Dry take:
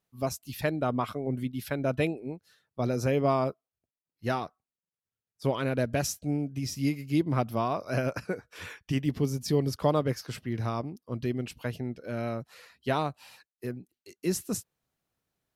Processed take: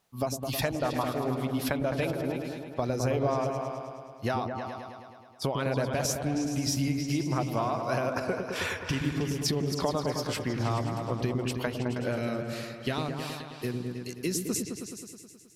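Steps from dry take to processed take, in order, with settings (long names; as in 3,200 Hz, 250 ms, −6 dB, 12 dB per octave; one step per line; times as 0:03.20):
parametric band 830 Hz +7 dB 1.3 octaves, from 0:12.16 −6 dB
downward compressor 6 to 1, threshold −35 dBFS, peak gain reduction 17.5 dB
parametric band 5,400 Hz +5 dB 2.7 octaves
echo whose low-pass opens from repeat to repeat 106 ms, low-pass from 400 Hz, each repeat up 2 octaves, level −3 dB
level +6.5 dB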